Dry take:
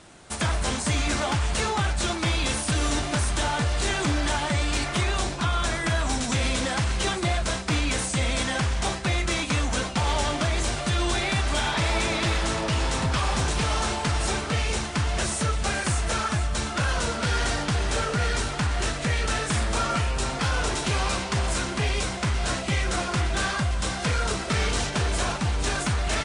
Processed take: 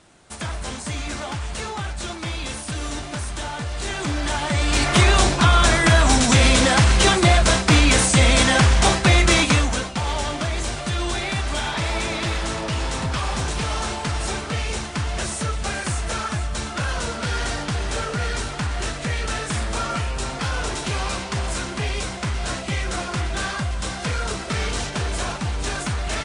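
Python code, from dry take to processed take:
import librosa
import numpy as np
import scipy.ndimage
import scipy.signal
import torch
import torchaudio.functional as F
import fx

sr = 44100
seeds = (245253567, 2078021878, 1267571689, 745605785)

y = fx.gain(x, sr, db=fx.line((3.64, -4.0), (4.54, 3.0), (4.99, 10.0), (9.44, 10.0), (9.86, 0.0)))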